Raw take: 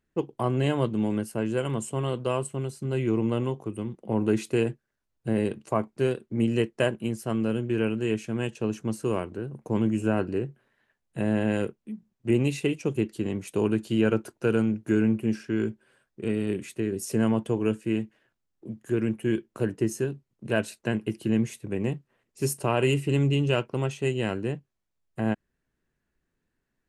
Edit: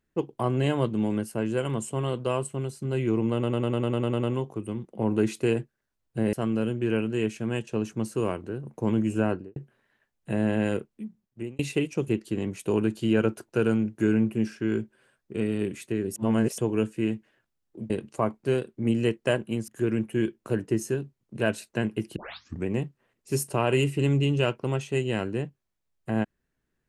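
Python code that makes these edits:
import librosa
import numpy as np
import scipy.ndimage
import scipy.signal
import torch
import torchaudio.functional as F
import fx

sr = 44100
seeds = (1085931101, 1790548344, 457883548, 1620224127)

y = fx.studio_fade_out(x, sr, start_s=10.13, length_s=0.31)
y = fx.edit(y, sr, fx.stutter(start_s=3.33, slice_s=0.1, count=10),
    fx.move(start_s=5.43, length_s=1.78, to_s=18.78),
    fx.fade_out_span(start_s=11.9, length_s=0.57),
    fx.reverse_span(start_s=17.04, length_s=0.42),
    fx.tape_start(start_s=21.26, length_s=0.5), tone=tone)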